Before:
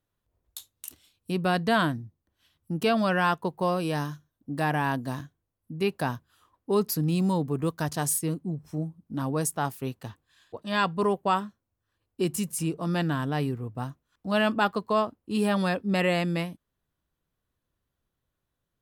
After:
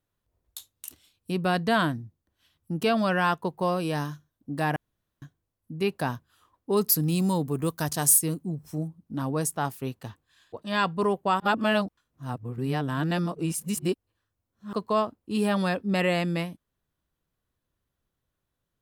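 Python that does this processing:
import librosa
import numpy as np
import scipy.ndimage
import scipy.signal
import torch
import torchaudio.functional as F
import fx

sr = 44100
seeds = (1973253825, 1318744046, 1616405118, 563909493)

y = fx.high_shelf(x, sr, hz=6300.0, db=11.5, at=(6.77, 8.88))
y = fx.edit(y, sr, fx.room_tone_fill(start_s=4.76, length_s=0.46),
    fx.reverse_span(start_s=11.4, length_s=3.33), tone=tone)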